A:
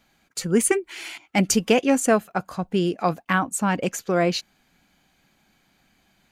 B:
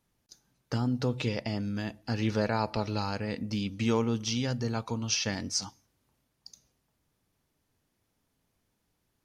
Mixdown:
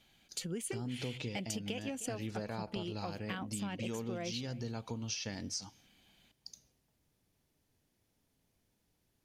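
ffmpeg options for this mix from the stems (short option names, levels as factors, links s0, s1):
-filter_complex "[0:a]equalizer=f=3200:t=o:w=0.6:g=10,acompressor=threshold=0.1:ratio=2.5,volume=0.501,asplit=2[s0][s1];[s1]volume=0.0944[s2];[1:a]volume=0.944[s3];[s2]aecho=0:1:309:1[s4];[s0][s3][s4]amix=inputs=3:normalize=0,equalizer=f=1200:t=o:w=0.92:g=-5.5,acompressor=threshold=0.0126:ratio=4"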